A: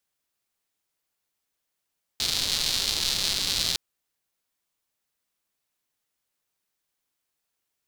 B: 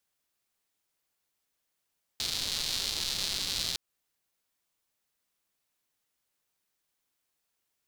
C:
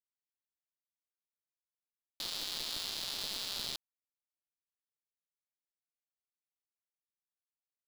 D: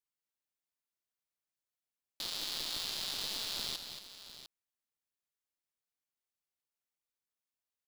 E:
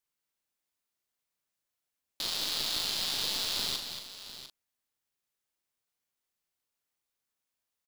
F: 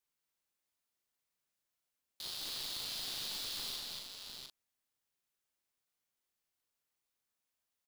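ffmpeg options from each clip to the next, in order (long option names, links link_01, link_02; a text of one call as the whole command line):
ffmpeg -i in.wav -af "alimiter=limit=-15.5dB:level=0:latency=1:release=166" out.wav
ffmpeg -i in.wav -af "aeval=exprs='val(0)*gte(abs(val(0)),0.0178)':channel_layout=same,aeval=exprs='(tanh(25.1*val(0)+0.25)-tanh(0.25))/25.1':channel_layout=same" out.wav
ffmpeg -i in.wav -af "aecho=1:1:229|701:0.376|0.224" out.wav
ffmpeg -i in.wav -filter_complex "[0:a]asplit=2[link_01][link_02];[link_02]adelay=39,volume=-6dB[link_03];[link_01][link_03]amix=inputs=2:normalize=0,volume=5dB" out.wav
ffmpeg -i in.wav -af "asoftclip=type=tanh:threshold=-34dB,volume=-1.5dB" out.wav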